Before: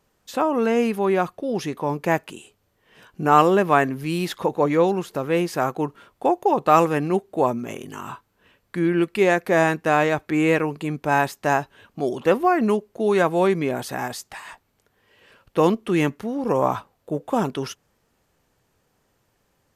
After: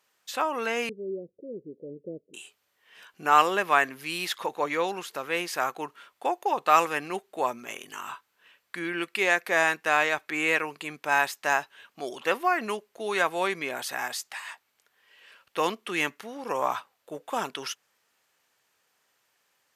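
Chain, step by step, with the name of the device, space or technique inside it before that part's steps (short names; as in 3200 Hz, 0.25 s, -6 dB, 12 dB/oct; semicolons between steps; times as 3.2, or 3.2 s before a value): filter by subtraction (in parallel: LPF 2200 Hz 12 dB/oct + phase invert); 0.89–2.34 on the sum: steep low-pass 520 Hz 72 dB/oct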